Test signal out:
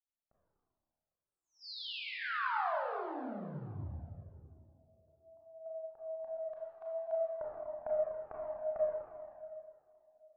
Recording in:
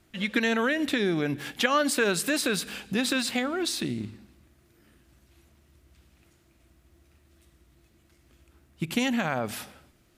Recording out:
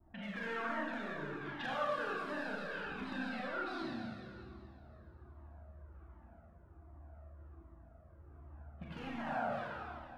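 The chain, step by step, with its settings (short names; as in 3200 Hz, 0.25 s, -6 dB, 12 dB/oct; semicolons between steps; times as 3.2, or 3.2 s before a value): air absorption 370 m; hard clip -23 dBFS; de-hum 56.56 Hz, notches 23; compressor 6:1, threshold -45 dBFS; low-pass opened by the level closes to 400 Hz, open at -45 dBFS; vibrato 0.63 Hz 13 cents; band shelf 1000 Hz +9.5 dB; on a send: tape echo 0.14 s, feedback 85%, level -13 dB, low-pass 1200 Hz; on the sum: Schroeder reverb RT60 2.1 s, combs from 27 ms, DRR -5.5 dB; cascading flanger falling 1.3 Hz; gain +1 dB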